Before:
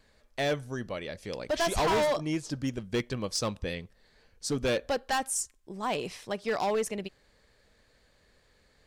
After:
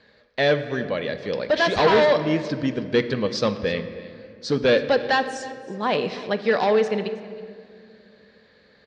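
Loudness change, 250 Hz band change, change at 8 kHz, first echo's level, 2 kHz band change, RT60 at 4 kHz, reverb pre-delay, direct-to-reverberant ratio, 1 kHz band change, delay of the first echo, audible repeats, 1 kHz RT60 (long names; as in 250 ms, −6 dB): +9.0 dB, +8.5 dB, −8.0 dB, −19.0 dB, +10.5 dB, 1.2 s, 5 ms, 9.0 dB, +7.0 dB, 319 ms, 1, 1.9 s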